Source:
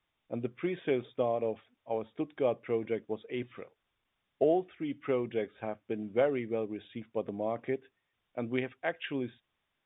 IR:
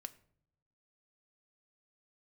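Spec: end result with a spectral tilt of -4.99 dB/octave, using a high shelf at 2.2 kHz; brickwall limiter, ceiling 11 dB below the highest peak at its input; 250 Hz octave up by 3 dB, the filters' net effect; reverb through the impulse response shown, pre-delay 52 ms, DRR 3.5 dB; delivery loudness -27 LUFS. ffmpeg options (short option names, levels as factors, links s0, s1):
-filter_complex "[0:a]equalizer=f=250:t=o:g=4,highshelf=f=2200:g=-6.5,alimiter=level_in=1.12:limit=0.0631:level=0:latency=1,volume=0.891,asplit=2[s0][s1];[1:a]atrim=start_sample=2205,adelay=52[s2];[s1][s2]afir=irnorm=-1:irlink=0,volume=1.19[s3];[s0][s3]amix=inputs=2:normalize=0,volume=2.51"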